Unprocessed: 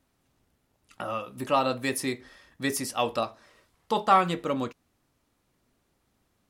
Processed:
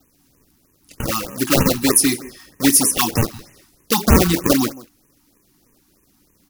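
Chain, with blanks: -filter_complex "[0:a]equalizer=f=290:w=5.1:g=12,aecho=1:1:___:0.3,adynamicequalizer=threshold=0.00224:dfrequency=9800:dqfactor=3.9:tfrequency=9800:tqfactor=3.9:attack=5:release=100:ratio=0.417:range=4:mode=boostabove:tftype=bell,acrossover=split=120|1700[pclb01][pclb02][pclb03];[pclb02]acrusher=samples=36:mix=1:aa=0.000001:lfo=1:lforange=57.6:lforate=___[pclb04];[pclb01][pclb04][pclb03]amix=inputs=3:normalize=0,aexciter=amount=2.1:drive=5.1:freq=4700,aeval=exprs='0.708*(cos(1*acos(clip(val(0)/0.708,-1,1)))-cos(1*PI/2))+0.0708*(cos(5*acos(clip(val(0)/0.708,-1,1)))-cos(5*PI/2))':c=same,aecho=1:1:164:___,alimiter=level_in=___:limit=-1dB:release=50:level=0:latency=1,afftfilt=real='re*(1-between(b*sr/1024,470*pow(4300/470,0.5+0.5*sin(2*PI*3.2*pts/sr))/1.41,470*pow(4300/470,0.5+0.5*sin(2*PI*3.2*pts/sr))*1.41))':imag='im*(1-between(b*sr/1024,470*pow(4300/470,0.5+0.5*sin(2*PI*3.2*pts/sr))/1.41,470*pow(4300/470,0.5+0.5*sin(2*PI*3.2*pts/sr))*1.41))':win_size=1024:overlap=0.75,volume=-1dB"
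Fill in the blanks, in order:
5.4, 3.2, 0.1, 7dB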